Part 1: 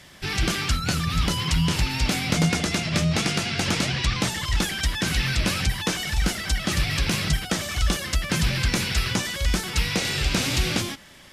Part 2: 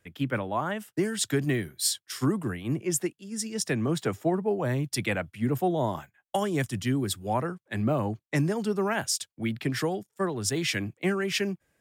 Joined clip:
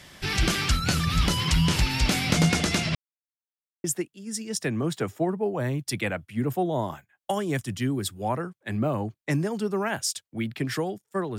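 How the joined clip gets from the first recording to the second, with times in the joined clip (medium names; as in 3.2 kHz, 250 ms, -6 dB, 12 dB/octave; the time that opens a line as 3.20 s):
part 1
2.95–3.84 s: mute
3.84 s: go over to part 2 from 2.89 s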